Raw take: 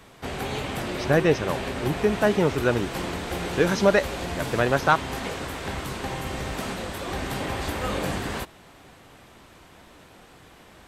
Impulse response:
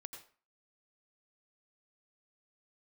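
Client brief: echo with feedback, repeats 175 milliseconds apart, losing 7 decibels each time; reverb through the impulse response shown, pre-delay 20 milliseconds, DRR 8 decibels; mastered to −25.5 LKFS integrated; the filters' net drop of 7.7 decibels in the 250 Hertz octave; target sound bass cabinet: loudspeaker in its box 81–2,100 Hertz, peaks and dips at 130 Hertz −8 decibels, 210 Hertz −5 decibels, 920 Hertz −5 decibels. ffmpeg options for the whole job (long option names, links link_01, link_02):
-filter_complex "[0:a]equalizer=frequency=250:width_type=o:gain=-8.5,aecho=1:1:175|350|525|700|875:0.447|0.201|0.0905|0.0407|0.0183,asplit=2[link_01][link_02];[1:a]atrim=start_sample=2205,adelay=20[link_03];[link_02][link_03]afir=irnorm=-1:irlink=0,volume=-3.5dB[link_04];[link_01][link_04]amix=inputs=2:normalize=0,highpass=frequency=81:width=0.5412,highpass=frequency=81:width=1.3066,equalizer=frequency=130:width_type=q:width=4:gain=-8,equalizer=frequency=210:width_type=q:width=4:gain=-5,equalizer=frequency=920:width_type=q:width=4:gain=-5,lowpass=frequency=2100:width=0.5412,lowpass=frequency=2100:width=1.3066,volume=2dB"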